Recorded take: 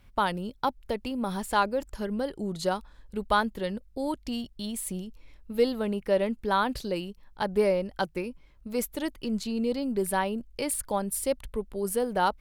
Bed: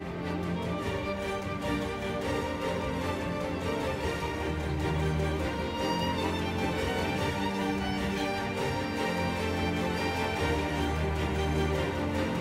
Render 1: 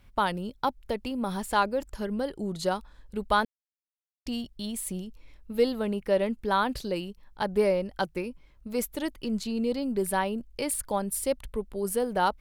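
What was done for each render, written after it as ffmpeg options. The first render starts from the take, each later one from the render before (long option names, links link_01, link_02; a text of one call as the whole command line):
ffmpeg -i in.wav -filter_complex "[0:a]asplit=3[link_01][link_02][link_03];[link_01]atrim=end=3.45,asetpts=PTS-STARTPTS,afade=type=out:start_time=3.446:duration=0.004:curve=hsin[link_04];[link_02]atrim=start=3.45:end=4.26,asetpts=PTS-STARTPTS,volume=0[link_05];[link_03]atrim=start=4.26,asetpts=PTS-STARTPTS,afade=type=in:duration=0.004:curve=hsin[link_06];[link_04][link_05][link_06]concat=n=3:v=0:a=1" out.wav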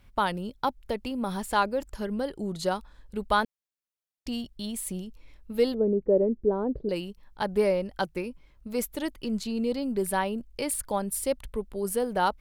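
ffmpeg -i in.wav -filter_complex "[0:a]asettb=1/sr,asplit=3[link_01][link_02][link_03];[link_01]atrim=end=5.744[link_04];[link_02]atrim=start=5.74:end=6.89,asetpts=PTS-STARTPTS,afade=type=in:duration=0.004:curve=qsin,afade=type=out:start_time=1.146:duration=0.004:curve=qsin,lowpass=frequency=430:width_type=q:width=2.6[link_05];[link_03]atrim=start=6.886[link_06];[link_04][link_05]acrossfade=duration=0.004:curve1=hsin:curve2=qsin[link_07];[link_07][link_06]acrossfade=duration=0.004:curve1=qsin:curve2=hsin" out.wav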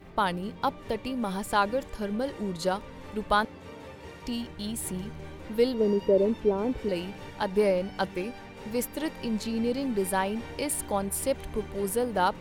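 ffmpeg -i in.wav -i bed.wav -filter_complex "[1:a]volume=-13dB[link_01];[0:a][link_01]amix=inputs=2:normalize=0" out.wav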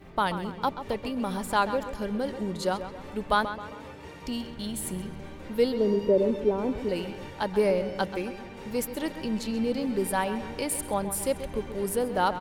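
ffmpeg -i in.wav -filter_complex "[0:a]asplit=2[link_01][link_02];[link_02]adelay=133,lowpass=frequency=4000:poles=1,volume=-11dB,asplit=2[link_03][link_04];[link_04]adelay=133,lowpass=frequency=4000:poles=1,volume=0.49,asplit=2[link_05][link_06];[link_06]adelay=133,lowpass=frequency=4000:poles=1,volume=0.49,asplit=2[link_07][link_08];[link_08]adelay=133,lowpass=frequency=4000:poles=1,volume=0.49,asplit=2[link_09][link_10];[link_10]adelay=133,lowpass=frequency=4000:poles=1,volume=0.49[link_11];[link_01][link_03][link_05][link_07][link_09][link_11]amix=inputs=6:normalize=0" out.wav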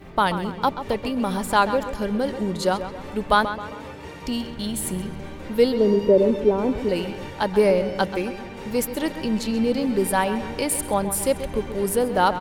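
ffmpeg -i in.wav -af "volume=6dB" out.wav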